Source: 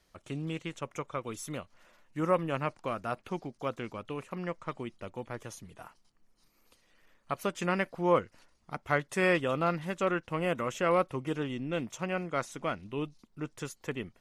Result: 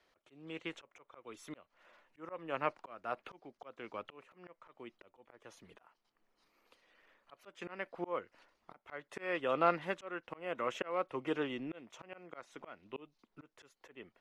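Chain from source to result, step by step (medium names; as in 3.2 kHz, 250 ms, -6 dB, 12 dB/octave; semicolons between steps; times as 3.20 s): three-band isolator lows -16 dB, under 290 Hz, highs -15 dB, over 4 kHz; slow attack 428 ms; trim +1 dB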